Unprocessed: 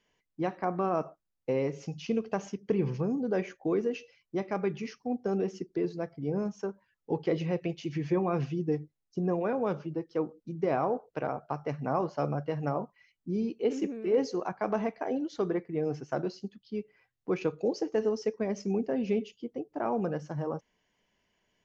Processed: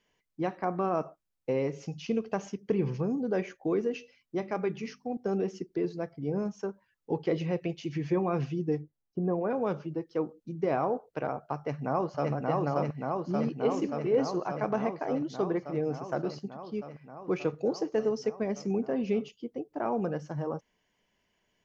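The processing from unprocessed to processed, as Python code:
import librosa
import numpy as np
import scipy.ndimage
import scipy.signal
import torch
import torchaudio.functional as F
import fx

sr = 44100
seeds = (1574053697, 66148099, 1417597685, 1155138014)

y = fx.hum_notches(x, sr, base_hz=50, count=5, at=(3.92, 5.17))
y = fx.lowpass(y, sr, hz=1400.0, slope=12, at=(8.81, 9.49), fade=0.02)
y = fx.echo_throw(y, sr, start_s=11.56, length_s=0.76, ms=580, feedback_pct=80, wet_db=-1.0)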